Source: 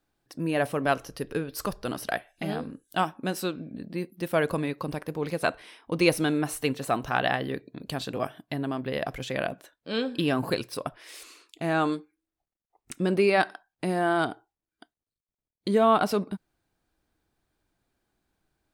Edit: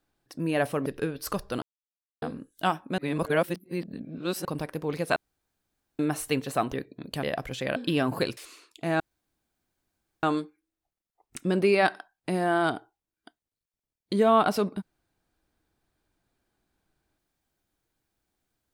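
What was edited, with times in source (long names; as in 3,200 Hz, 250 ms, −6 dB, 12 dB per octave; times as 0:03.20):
0:00.86–0:01.19: remove
0:01.95–0:02.55: silence
0:03.31–0:04.78: reverse
0:05.49–0:06.32: fill with room tone
0:07.06–0:07.49: remove
0:07.99–0:08.92: remove
0:09.45–0:10.07: remove
0:10.68–0:11.15: remove
0:11.78: splice in room tone 1.23 s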